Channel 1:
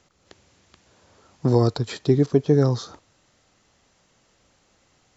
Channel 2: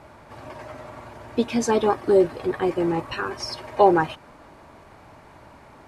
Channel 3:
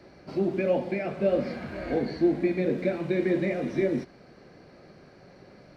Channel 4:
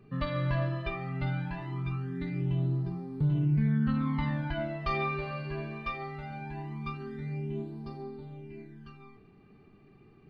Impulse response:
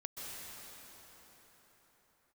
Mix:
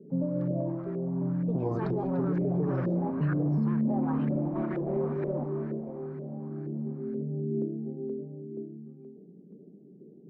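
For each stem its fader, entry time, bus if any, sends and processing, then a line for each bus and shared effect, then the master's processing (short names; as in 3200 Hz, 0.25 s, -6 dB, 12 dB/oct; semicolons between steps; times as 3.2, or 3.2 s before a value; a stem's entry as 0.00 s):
-12.0 dB, 0.10 s, no send, bell 1700 Hz -12 dB 1.3 oct
-16.0 dB, 0.10 s, no send, soft clip -14.5 dBFS, distortion -12 dB
-16.0 dB, 1.45 s, send -3.5 dB, bell 210 Hz +9.5 dB 2.2 oct; de-hum 97.45 Hz, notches 30; overloaded stage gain 22.5 dB
+2.5 dB, 0.00 s, no send, elliptic band-pass 170–540 Hz, stop band 40 dB; low shelf 260 Hz +10 dB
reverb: on, pre-delay 0.118 s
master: high shelf 3600 Hz +10.5 dB; LFO low-pass saw up 2.1 Hz 500–1700 Hz; limiter -20.5 dBFS, peak gain reduction 9 dB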